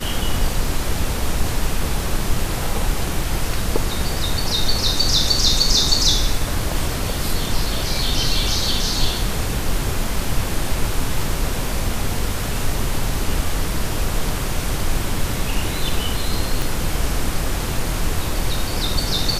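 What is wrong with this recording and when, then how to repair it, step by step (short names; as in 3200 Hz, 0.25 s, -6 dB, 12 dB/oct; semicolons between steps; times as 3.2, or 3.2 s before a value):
16.62 pop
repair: de-click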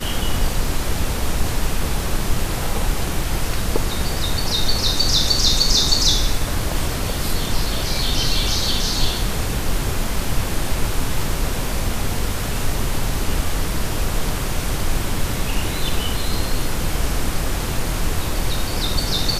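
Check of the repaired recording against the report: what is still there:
16.62 pop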